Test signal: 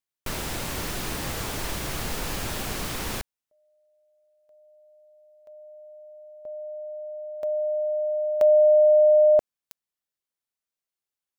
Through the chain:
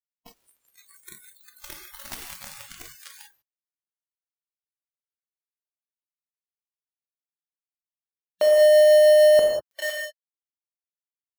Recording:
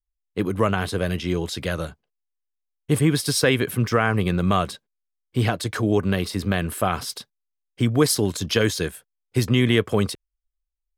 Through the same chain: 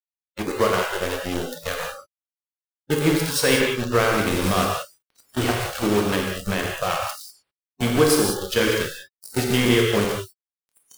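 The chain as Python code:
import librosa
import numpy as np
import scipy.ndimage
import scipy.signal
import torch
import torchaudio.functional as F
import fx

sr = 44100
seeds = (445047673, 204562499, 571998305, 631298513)

y = fx.peak_eq(x, sr, hz=140.0, db=-6.5, octaves=0.63)
y = fx.echo_diffused(y, sr, ms=1335, feedback_pct=55, wet_db=-10.0)
y = np.where(np.abs(y) >= 10.0 ** (-21.5 / 20.0), y, 0.0)
y = y * (1.0 - 0.29 / 2.0 + 0.29 / 2.0 * np.cos(2.0 * np.pi * 6.5 * (np.arange(len(y)) / sr)))
y = fx.rev_gated(y, sr, seeds[0], gate_ms=220, shape='flat', drr_db=-1.0)
y = fx.noise_reduce_blind(y, sr, reduce_db=26)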